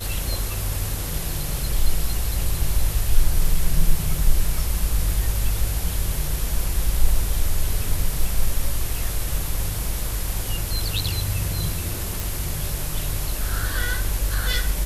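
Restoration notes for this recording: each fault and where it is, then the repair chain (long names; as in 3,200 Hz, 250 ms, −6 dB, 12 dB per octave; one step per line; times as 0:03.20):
0:12.20: click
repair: click removal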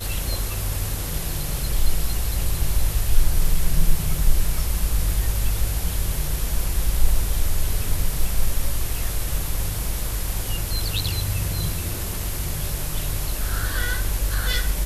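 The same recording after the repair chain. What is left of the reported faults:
none of them is left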